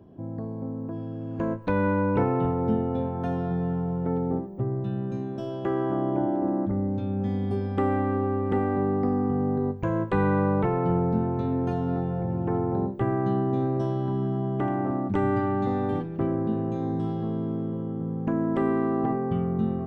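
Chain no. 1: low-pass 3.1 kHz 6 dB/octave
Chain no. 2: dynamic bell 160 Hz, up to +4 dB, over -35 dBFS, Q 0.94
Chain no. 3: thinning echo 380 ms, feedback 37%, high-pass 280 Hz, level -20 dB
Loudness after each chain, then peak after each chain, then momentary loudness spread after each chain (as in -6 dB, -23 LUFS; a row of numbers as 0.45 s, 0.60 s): -27.0 LUFS, -25.0 LUFS, -27.0 LUFS; -12.0 dBFS, -10.5 dBFS, -12.0 dBFS; 6 LU, 6 LU, 7 LU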